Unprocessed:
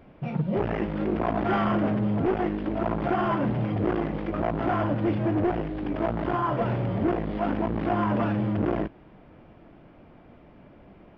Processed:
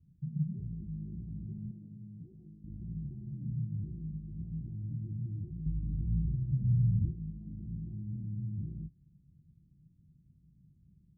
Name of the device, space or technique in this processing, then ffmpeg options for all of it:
the neighbour's flat through the wall: -filter_complex "[0:a]lowpass=frequency=150:width=0.5412,lowpass=frequency=150:width=1.3066,equalizer=frequency=160:width_type=o:width=0.41:gain=8,asettb=1/sr,asplit=3[link_01][link_02][link_03];[link_01]atrim=end=1.714[link_04];[link_02]atrim=start=1.71:end=2.64,asetpts=PTS-STARTPTS,afade=type=in:duration=0.004:curve=qsin,afade=type=out:start_time=0.926:duration=0.004:curve=qsin,aemphasis=mode=production:type=riaa[link_05];[link_03]atrim=start=2.636[link_06];[link_04][link_05]acrossfade=duration=0.004:curve1=hsin:curve2=qsin[link_07];[link_07][link_06]acrossfade=duration=0.004:curve1=qsin:curve2=hsin,asettb=1/sr,asplit=3[link_08][link_09][link_10];[link_08]atrim=end=5.664[link_11];[link_09]atrim=start=5.66:end=7.11,asetpts=PTS-STARTPTS,afade=type=in:duration=0.004:curve=qsin,afade=type=out:start_time=1.446:duration=0.004:curve=qsin,aemphasis=mode=reproduction:type=bsi[link_12];[link_10]atrim=start=7.106[link_13];[link_11][link_12]acrossfade=duration=0.004:curve1=hsin:curve2=qsin[link_14];[link_14][link_13]acrossfade=duration=0.004:curve1=qsin:curve2=hsin,highpass=43,equalizer=frequency=380:width_type=o:width=0.59:gain=5,volume=-7.5dB"

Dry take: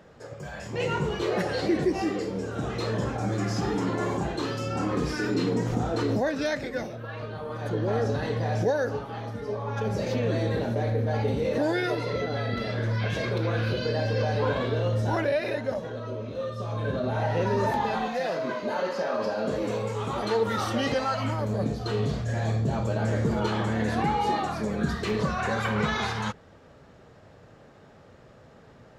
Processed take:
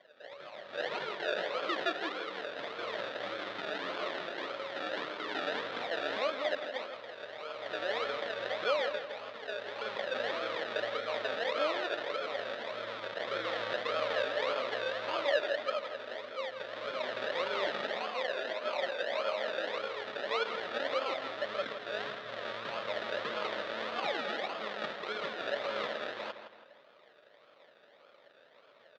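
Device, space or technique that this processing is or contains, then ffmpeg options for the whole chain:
circuit-bent sampling toy: -filter_complex "[0:a]asettb=1/sr,asplit=3[link_01][link_02][link_03];[link_01]atrim=end=13.274[link_04];[link_02]atrim=start=13.27:end=14.23,asetpts=PTS-STARTPTS,afade=type=in:duration=0.004:curve=qsin,afade=type=out:start_time=0.956:duration=0.004:curve=qsin,lowshelf=frequency=320:gain=5[link_05];[link_03]atrim=start=14.226[link_06];[link_04][link_05]acrossfade=duration=0.004:curve1=hsin:curve2=qsin[link_07];[link_07][link_06]acrossfade=duration=0.004:curve1=qsin:curve2=hsin,acrusher=samples=33:mix=1:aa=0.000001:lfo=1:lforange=19.8:lforate=1.7,highpass=570,equalizer=frequency=580:width_type=q:width=4:gain=8,equalizer=frequency=830:width_type=q:width=4:gain=-4,equalizer=frequency=1300:width_type=q:width=4:gain=5,equalizer=frequency=1800:width_type=q:width=4:gain=5,equalizer=frequency=3600:width_type=q:width=4:gain=8,lowpass=frequency=4300:width=0.5412,lowpass=frequency=4300:width=1.3066,asplit=2[link_08][link_09];[link_09]adelay=164,lowpass=frequency=4700:poles=1,volume=-9.5dB,asplit=2[link_10][link_11];[link_11]adelay=164,lowpass=frequency=4700:poles=1,volume=0.44,asplit=2[link_12][link_13];[link_13]adelay=164,lowpass=frequency=4700:poles=1,volume=0.44,asplit=2[link_14][link_15];[link_15]adelay=164,lowpass=frequency=4700:poles=1,volume=0.44,asplit=2[link_16][link_17];[link_17]adelay=164,lowpass=frequency=4700:poles=1,volume=0.44[link_18];[link_08][link_10][link_12][link_14][link_16][link_18]amix=inputs=6:normalize=0,volume=-7dB"

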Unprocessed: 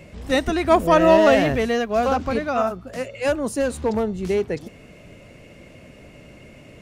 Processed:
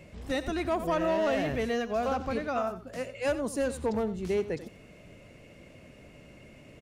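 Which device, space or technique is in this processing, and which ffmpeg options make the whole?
soft clipper into limiter: -af "aecho=1:1:89:0.188,asoftclip=type=tanh:threshold=-6.5dB,alimiter=limit=-13.5dB:level=0:latency=1:release=311,volume=-7dB"

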